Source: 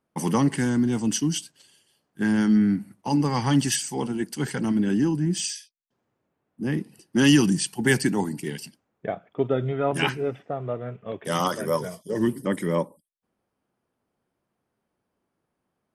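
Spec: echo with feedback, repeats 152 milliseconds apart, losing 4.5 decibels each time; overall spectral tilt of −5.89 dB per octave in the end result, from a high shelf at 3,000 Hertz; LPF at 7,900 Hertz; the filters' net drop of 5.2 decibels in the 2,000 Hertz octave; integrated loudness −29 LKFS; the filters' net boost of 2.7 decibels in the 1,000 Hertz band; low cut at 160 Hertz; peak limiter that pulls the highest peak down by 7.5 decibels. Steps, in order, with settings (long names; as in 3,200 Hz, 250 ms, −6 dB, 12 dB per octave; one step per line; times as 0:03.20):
high-pass filter 160 Hz
low-pass filter 7,900 Hz
parametric band 1,000 Hz +5.5 dB
parametric band 2,000 Hz −7 dB
high-shelf EQ 3,000 Hz −5.5 dB
brickwall limiter −16 dBFS
repeating echo 152 ms, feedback 60%, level −4.5 dB
level −3 dB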